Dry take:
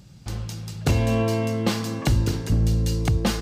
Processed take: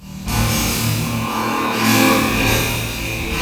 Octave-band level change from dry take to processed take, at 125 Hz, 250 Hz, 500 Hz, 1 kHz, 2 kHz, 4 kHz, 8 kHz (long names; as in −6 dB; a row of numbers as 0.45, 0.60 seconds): +0.5, +6.5, +4.5, +13.5, +15.5, +12.0, +13.5 decibels